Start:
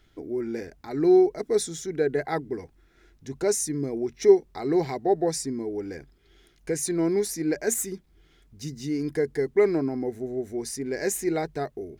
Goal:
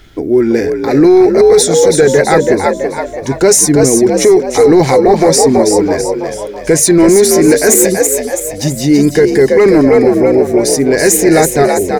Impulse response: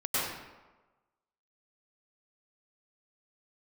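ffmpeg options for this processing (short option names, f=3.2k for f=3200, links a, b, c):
-filter_complex "[0:a]asplit=7[a][b][c][d][e][f][g];[b]adelay=329,afreqshift=55,volume=-6dB[h];[c]adelay=658,afreqshift=110,volume=-12.6dB[i];[d]adelay=987,afreqshift=165,volume=-19.1dB[j];[e]adelay=1316,afreqshift=220,volume=-25.7dB[k];[f]adelay=1645,afreqshift=275,volume=-32.2dB[l];[g]adelay=1974,afreqshift=330,volume=-38.8dB[m];[a][h][i][j][k][l][m]amix=inputs=7:normalize=0,apsyclip=21.5dB,volume=-1.5dB"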